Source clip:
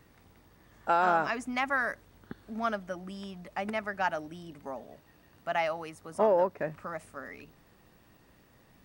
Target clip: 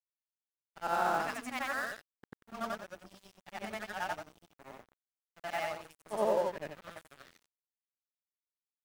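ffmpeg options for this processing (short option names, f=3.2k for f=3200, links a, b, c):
-af "afftfilt=real='re':imag='-im':win_size=8192:overlap=0.75,aeval=exprs='sgn(val(0))*max(abs(val(0))-0.00562,0)':c=same,crystalizer=i=1:c=0"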